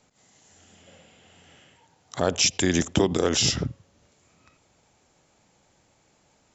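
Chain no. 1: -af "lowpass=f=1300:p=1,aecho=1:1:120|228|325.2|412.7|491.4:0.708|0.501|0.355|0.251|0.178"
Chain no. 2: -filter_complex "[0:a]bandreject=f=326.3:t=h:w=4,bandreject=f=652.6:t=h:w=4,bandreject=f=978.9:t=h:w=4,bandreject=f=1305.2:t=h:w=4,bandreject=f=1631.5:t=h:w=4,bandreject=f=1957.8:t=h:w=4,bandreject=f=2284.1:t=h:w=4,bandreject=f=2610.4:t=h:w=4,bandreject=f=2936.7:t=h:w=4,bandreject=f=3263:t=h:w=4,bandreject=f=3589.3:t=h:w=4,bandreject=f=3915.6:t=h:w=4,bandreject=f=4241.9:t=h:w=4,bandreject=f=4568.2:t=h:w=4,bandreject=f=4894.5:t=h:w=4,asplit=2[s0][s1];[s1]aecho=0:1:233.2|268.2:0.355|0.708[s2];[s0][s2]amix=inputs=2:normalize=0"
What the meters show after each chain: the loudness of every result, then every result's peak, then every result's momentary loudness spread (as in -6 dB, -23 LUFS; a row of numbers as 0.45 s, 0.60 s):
-24.0 LUFS, -21.5 LUFS; -7.0 dBFS, -6.5 dBFS; 17 LU, 14 LU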